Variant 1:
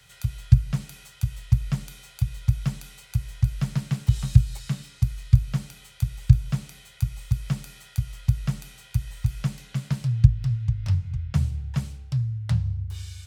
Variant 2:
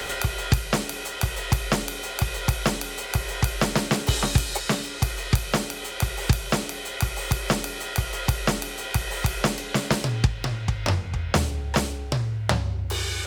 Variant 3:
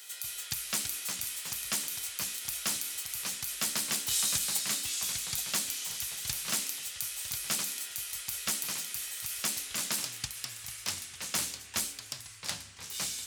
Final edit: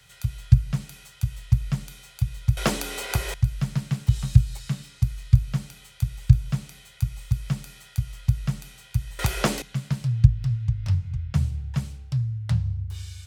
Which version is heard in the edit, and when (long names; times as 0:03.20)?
1
0:02.57–0:03.34: punch in from 2
0:09.19–0:09.62: punch in from 2
not used: 3